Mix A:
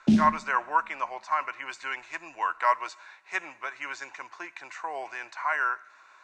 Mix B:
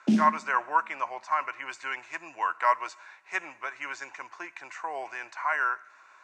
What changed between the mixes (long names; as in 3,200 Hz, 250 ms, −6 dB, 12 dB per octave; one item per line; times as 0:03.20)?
background: add high-pass filter 210 Hz 24 dB per octave
master: add parametric band 3,900 Hz −5 dB 0.45 octaves